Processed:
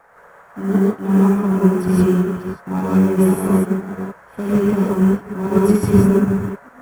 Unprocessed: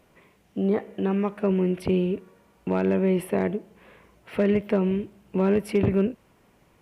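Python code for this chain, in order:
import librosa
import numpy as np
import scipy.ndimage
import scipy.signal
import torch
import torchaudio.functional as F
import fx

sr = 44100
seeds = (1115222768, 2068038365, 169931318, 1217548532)

p1 = fx.reverse_delay(x, sr, ms=304, wet_db=-5.5)
p2 = fx.peak_eq(p1, sr, hz=2000.0, db=-12.5, octaves=0.75)
p3 = p2 + 0.64 * np.pad(p2, (int(0.9 * sr / 1000.0), 0))[:len(p2)]
p4 = fx.dmg_noise_band(p3, sr, seeds[0], low_hz=470.0, high_hz=1700.0, level_db=-41.0)
p5 = fx.backlash(p4, sr, play_db=-36.5)
p6 = p4 + (p5 * librosa.db_to_amplitude(-9.5))
p7 = fx.comb_fb(p6, sr, f0_hz=140.0, decay_s=0.21, harmonics='all', damping=0.0, mix_pct=40)
p8 = fx.quant_companded(p7, sr, bits=8)
p9 = fx.high_shelf_res(p8, sr, hz=5300.0, db=6.5, q=1.5)
p10 = fx.rev_gated(p9, sr, seeds[1], gate_ms=190, shape='rising', drr_db=-5.0)
p11 = fx.upward_expand(p10, sr, threshold_db=-38.0, expansion=1.5)
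y = p11 * librosa.db_to_amplitude(3.5)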